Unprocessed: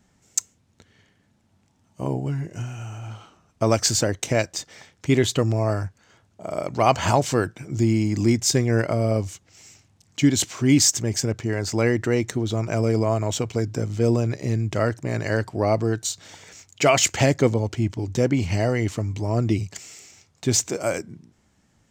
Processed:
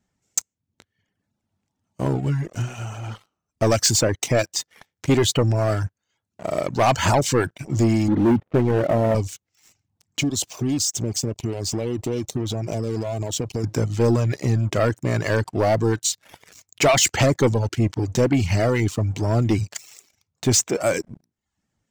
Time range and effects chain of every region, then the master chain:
0:08.08–0:09.15: variable-slope delta modulation 16 kbit/s + leveller curve on the samples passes 2 + resonant band-pass 360 Hz, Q 0.68
0:10.21–0:13.64: downward compressor 3 to 1, threshold −26 dBFS + hard clipping −21.5 dBFS + Butterworth band-reject 1,600 Hz, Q 0.86
whole clip: leveller curve on the samples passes 3; reverb reduction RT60 0.52 s; level −6 dB

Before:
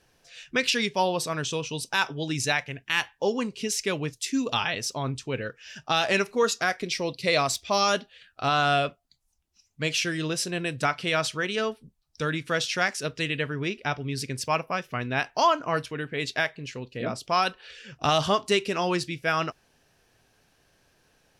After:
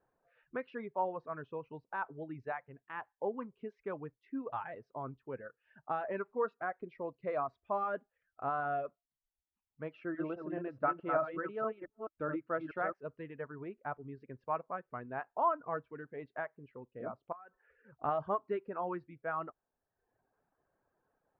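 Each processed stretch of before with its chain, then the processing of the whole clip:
0:09.93–0:12.94: delay that plays each chunk backwards 214 ms, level −3.5 dB + hollow resonant body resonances 320/600/1,300/2,700 Hz, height 8 dB
0:17.32–0:17.94: low-pass filter 2,400 Hz 24 dB per octave + downward compressor 16 to 1, threshold −36 dBFS
whole clip: low-pass filter 1,300 Hz 24 dB per octave; low-shelf EQ 270 Hz −11.5 dB; reverb reduction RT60 0.84 s; level −7 dB

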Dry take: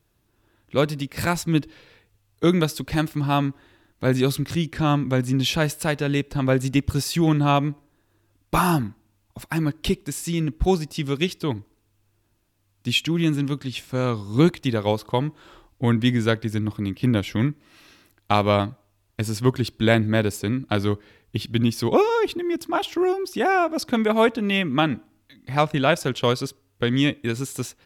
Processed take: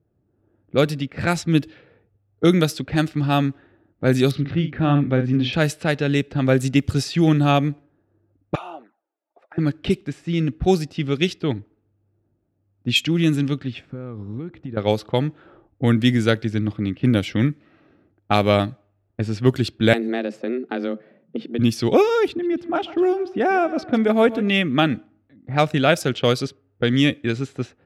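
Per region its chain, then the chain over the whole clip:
0:04.31–0:05.53: high-frequency loss of the air 290 metres + double-tracking delay 49 ms −9 dB
0:08.55–0:09.58: high-pass filter 510 Hz 24 dB per octave + downward compressor 2 to 1, threshold −31 dBFS + flanger swept by the level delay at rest 3.7 ms, full sweep at −29.5 dBFS
0:13.87–0:14.77: parametric band 680 Hz −5.5 dB 0.79 octaves + downward compressor 12 to 1, threshold −29 dBFS
0:19.93–0:21.59: frequency shifter +120 Hz + downward compressor 4 to 1, threshold −23 dBFS
0:22.28–0:24.48: high-shelf EQ 2,100 Hz −8.5 dB + repeating echo 143 ms, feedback 45%, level −16.5 dB
whole clip: high-pass filter 80 Hz; low-pass that shuts in the quiet parts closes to 680 Hz, open at −16.5 dBFS; parametric band 1,000 Hz −12 dB 0.26 octaves; level +3 dB

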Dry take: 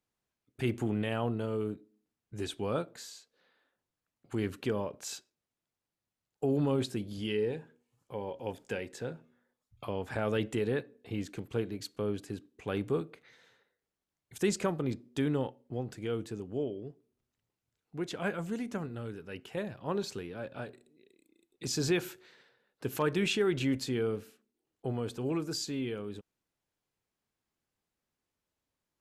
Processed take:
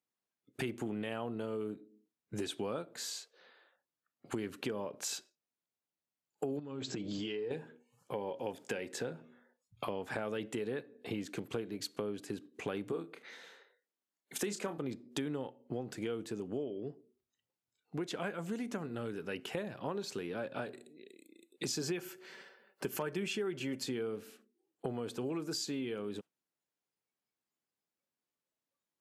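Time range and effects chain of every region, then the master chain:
0:06.59–0:07.51: comb filter 6.6 ms, depth 45% + downward compressor 12 to 1, threshold −37 dBFS + linear-phase brick-wall low-pass 7,900 Hz
0:12.92–0:14.78: high-pass filter 180 Hz 24 dB per octave + double-tracking delay 30 ms −9 dB
0:21.81–0:23.83: high-shelf EQ 12,000 Hz +3 dB + notch filter 3,800 Hz, Q 6.5 + comb filter 5.2 ms, depth 41%
whole clip: noise reduction from a noise print of the clip's start 15 dB; high-pass filter 170 Hz 12 dB per octave; downward compressor 6 to 1, threshold −44 dBFS; level +8.5 dB

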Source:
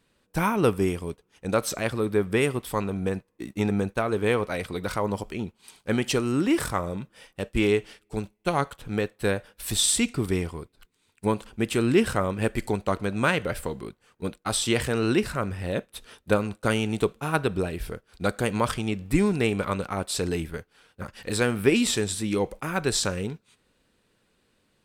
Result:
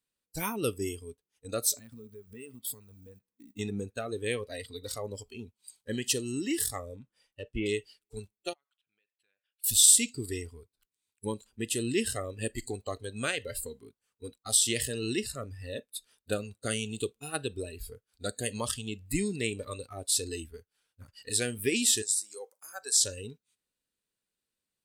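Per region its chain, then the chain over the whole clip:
0:01.78–0:03.59: parametric band 210 Hz +8.5 dB + downward compressor 5 to 1, threshold −33 dBFS + floating-point word with a short mantissa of 4 bits
0:06.96–0:07.66: treble cut that deepens with the level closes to 2,100 Hz, closed at −20 dBFS + high-shelf EQ 4,900 Hz −7.5 dB
0:08.53–0:09.64: spectral envelope exaggerated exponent 1.5 + resonant band-pass 2,800 Hz, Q 2.3 + downward compressor 2.5 to 1, threshold −58 dBFS
0:22.02–0:23.01: high-pass filter 670 Hz + flat-topped bell 2,800 Hz −8.5 dB 1.3 octaves
whole clip: first-order pre-emphasis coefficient 0.8; noise reduction from a noise print of the clip's start 17 dB; dynamic equaliser 1,300 Hz, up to −5 dB, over −55 dBFS, Q 1.7; level +5 dB

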